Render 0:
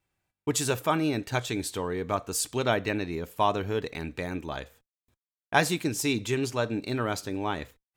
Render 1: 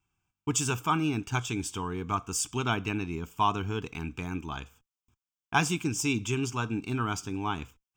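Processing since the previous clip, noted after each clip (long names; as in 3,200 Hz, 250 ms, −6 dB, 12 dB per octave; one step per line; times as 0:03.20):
phaser with its sweep stopped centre 2,800 Hz, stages 8
level +2 dB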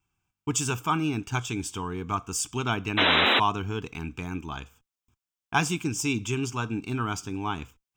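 sound drawn into the spectrogram noise, 0:02.97–0:03.40, 210–4,000 Hz −22 dBFS
level +1 dB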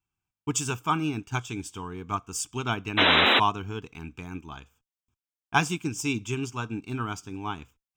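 expander for the loud parts 1.5 to 1, over −41 dBFS
level +2 dB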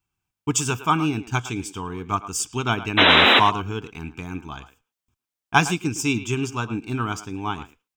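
far-end echo of a speakerphone 110 ms, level −13 dB
level +5.5 dB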